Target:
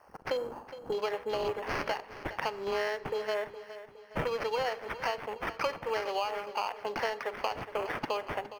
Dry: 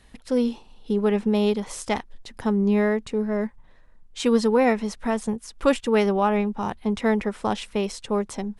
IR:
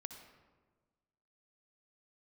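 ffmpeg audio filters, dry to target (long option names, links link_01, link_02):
-filter_complex "[0:a]highpass=frequency=550:width=0.5412,highpass=frequency=550:width=1.3066,acrusher=samples=12:mix=1:aa=0.000001,acontrast=48,equalizer=frequency=8100:width_type=o:width=0.24:gain=-2.5,acompressor=threshold=-33dB:ratio=10,afwtdn=0.00398,atempo=1,aecho=1:1:414|828|1242|1656|2070:0.2|0.0958|0.046|0.0221|0.0106,asplit=2[link_01][link_02];[1:a]atrim=start_sample=2205,asetrate=83790,aresample=44100[link_03];[link_02][link_03]afir=irnorm=-1:irlink=0,volume=1.5dB[link_04];[link_01][link_04]amix=inputs=2:normalize=0,volume=1dB"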